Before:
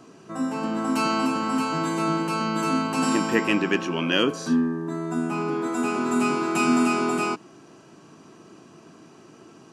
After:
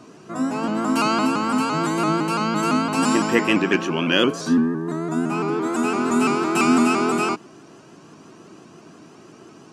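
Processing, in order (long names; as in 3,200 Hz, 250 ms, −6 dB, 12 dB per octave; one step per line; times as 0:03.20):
pitch modulation by a square or saw wave saw up 5.9 Hz, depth 100 cents
level +3.5 dB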